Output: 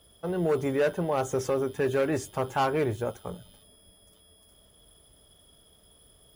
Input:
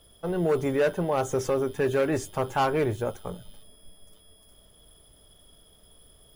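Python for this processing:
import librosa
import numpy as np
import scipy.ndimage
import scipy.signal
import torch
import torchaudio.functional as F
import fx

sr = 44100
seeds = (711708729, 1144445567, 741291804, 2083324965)

y = scipy.signal.sosfilt(scipy.signal.butter(2, 41.0, 'highpass', fs=sr, output='sos'), x)
y = y * 10.0 ** (-1.5 / 20.0)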